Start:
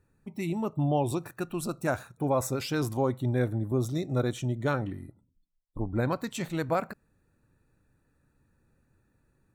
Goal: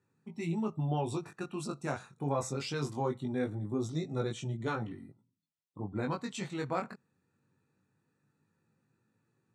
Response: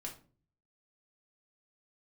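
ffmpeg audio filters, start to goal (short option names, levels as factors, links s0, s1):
-af "aeval=exprs='0.158*(cos(1*acos(clip(val(0)/0.158,-1,1)))-cos(1*PI/2))+0.00562*(cos(2*acos(clip(val(0)/0.158,-1,1)))-cos(2*PI/2))':c=same,highpass=f=120:w=0.5412,highpass=f=120:w=1.3066,equalizer=f=300:t=q:w=4:g=-4,equalizer=f=600:t=q:w=4:g=-8,equalizer=f=1600:t=q:w=4:g=-4,lowpass=f=8400:w=0.5412,lowpass=f=8400:w=1.3066,flanger=delay=18:depth=3.5:speed=0.21"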